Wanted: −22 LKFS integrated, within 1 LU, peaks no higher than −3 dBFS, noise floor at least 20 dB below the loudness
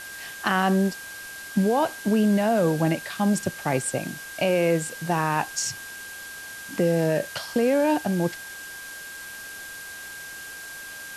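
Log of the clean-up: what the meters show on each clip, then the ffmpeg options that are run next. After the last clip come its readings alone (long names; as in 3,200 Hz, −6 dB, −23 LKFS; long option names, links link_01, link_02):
interfering tone 1,600 Hz; level of the tone −38 dBFS; background noise floor −39 dBFS; target noise floor −44 dBFS; integrated loudness −24.0 LKFS; sample peak −11.0 dBFS; target loudness −22.0 LKFS
→ -af "bandreject=frequency=1600:width=30"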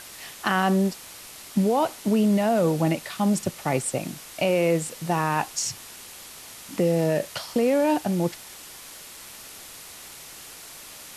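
interfering tone none found; background noise floor −43 dBFS; target noise floor −45 dBFS
→ -af "afftdn=noise_reduction=6:noise_floor=-43"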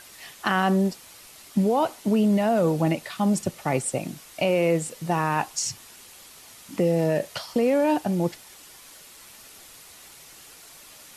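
background noise floor −48 dBFS; integrated loudness −24.5 LKFS; sample peak −11.5 dBFS; target loudness −22.0 LKFS
→ -af "volume=2.5dB"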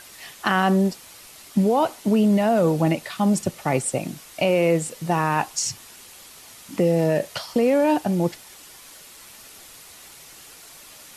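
integrated loudness −22.0 LKFS; sample peak −9.0 dBFS; background noise floor −46 dBFS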